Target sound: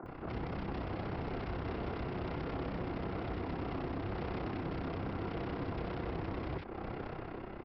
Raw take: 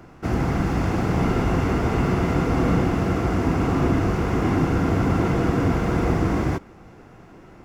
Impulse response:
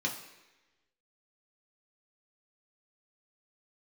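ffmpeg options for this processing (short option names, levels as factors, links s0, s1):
-filter_complex "[0:a]bass=f=250:g=-2,treble=f=4000:g=-14,dynaudnorm=f=320:g=5:m=3.76,alimiter=level_in=1.58:limit=0.0631:level=0:latency=1:release=260,volume=0.631,acontrast=39,tremolo=f=32:d=0.71,aresample=11025,volume=53.1,asoftclip=hard,volume=0.0188,aresample=44100,acrossover=split=190|1500[s0][s1][s2];[s0]adelay=30[s3];[s2]adelay=60[s4];[s3][s1][s4]amix=inputs=3:normalize=0"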